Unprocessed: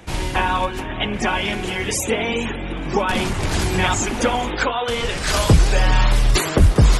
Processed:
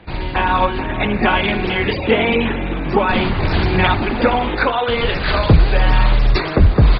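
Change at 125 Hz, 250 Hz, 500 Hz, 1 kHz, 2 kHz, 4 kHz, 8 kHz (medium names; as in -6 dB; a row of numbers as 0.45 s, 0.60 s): +2.5 dB, +4.5 dB, +4.5 dB, +4.0 dB, +4.0 dB, +0.5 dB, under -40 dB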